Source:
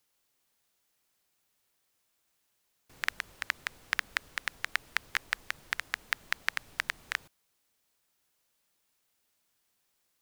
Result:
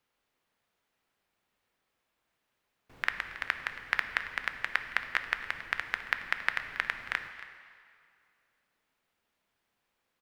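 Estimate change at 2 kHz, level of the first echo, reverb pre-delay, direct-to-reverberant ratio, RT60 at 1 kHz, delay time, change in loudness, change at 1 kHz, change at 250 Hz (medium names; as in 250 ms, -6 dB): +2.0 dB, -17.0 dB, 3 ms, 7.5 dB, 2.3 s, 275 ms, +1.5 dB, +3.0 dB, +3.0 dB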